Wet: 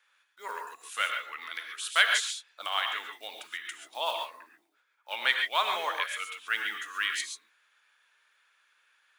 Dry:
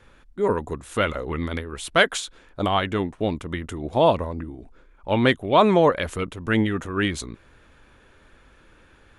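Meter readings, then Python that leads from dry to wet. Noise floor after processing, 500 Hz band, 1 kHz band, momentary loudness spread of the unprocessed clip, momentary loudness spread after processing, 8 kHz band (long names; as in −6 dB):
−72 dBFS, −20.0 dB, −8.5 dB, 13 LU, 16 LU, −0.5 dB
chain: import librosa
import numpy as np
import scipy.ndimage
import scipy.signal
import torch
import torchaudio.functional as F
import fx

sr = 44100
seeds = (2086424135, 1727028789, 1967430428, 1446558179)

y = fx.block_float(x, sr, bits=7)
y = scipy.signal.sosfilt(scipy.signal.butter(2, 1300.0, 'highpass', fs=sr, output='sos'), y)
y = fx.noise_reduce_blind(y, sr, reduce_db=7)
y = fx.lowpass(y, sr, hz=1700.0, slope=6)
y = fx.tilt_eq(y, sr, slope=4.5)
y = fx.rev_gated(y, sr, seeds[0], gate_ms=160, shape='rising', drr_db=3.5)
y = y * 10.0 ** (-2.5 / 20.0)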